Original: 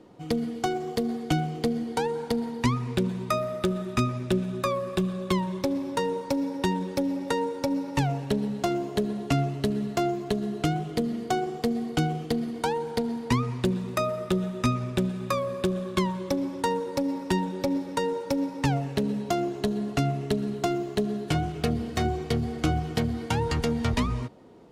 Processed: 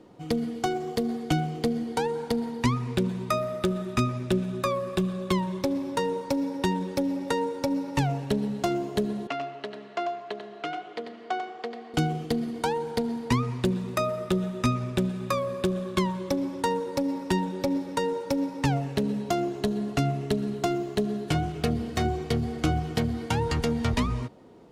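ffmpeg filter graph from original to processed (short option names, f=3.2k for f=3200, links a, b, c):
-filter_complex "[0:a]asettb=1/sr,asplit=3[a][b][c];[a]atrim=end=9.274[d];[b]atrim=start=9.27:end=11.94,asetpts=PTS-STARTPTS,afade=t=in:d=0.004:c=qsin,afade=t=out:st=2.666:d=0.004:c=qsin,highpass=610,lowpass=2.9k,aecho=1:1:93:0.422,atrim=end_sample=117747[e];[c]atrim=start=11.936[f];[d][e]acrossfade=d=0.004:c1=hsin:c2=qsin[g];[g][f]acrossfade=d=0.004:c1=qsin:c2=hsin"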